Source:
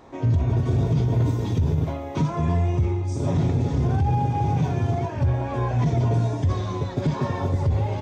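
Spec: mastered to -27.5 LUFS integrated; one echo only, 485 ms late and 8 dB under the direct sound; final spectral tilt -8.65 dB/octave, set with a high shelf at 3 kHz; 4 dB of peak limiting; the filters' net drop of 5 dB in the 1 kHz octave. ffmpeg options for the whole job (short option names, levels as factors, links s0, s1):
-af "equalizer=f=1000:t=o:g=-7,highshelf=f=3000:g=3.5,alimiter=limit=0.133:level=0:latency=1,aecho=1:1:485:0.398,volume=0.794"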